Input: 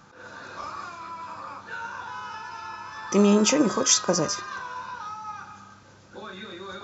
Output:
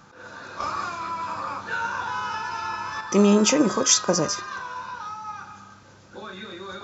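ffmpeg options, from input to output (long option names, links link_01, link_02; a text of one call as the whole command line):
ffmpeg -i in.wav -filter_complex "[0:a]asettb=1/sr,asplit=3[link_01][link_02][link_03];[link_01]atrim=end=0.604[link_04];[link_02]atrim=start=0.6:end=3.01,asetpts=PTS-STARTPTS,afade=type=in:duration=0.004:curve=qsin,afade=type=out:start_time=2.406:duration=0.004:curve=qsin,acontrast=50[link_05];[link_03]atrim=start=3.006[link_06];[link_04][link_05]acrossfade=duration=0.004:curve1=hsin:curve2=qsin[link_07];[link_07][link_06]acrossfade=duration=0.004:curve1=qsin:curve2=hsin,volume=1.5dB" out.wav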